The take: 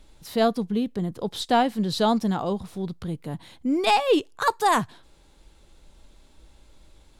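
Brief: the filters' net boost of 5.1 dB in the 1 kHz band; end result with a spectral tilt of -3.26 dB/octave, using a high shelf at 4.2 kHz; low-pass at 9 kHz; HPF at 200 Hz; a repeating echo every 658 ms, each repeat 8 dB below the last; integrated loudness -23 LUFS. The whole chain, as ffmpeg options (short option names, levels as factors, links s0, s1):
-af "highpass=200,lowpass=9000,equalizer=f=1000:t=o:g=7,highshelf=f=4200:g=-6.5,aecho=1:1:658|1316|1974|2632|3290:0.398|0.159|0.0637|0.0255|0.0102,volume=0.944"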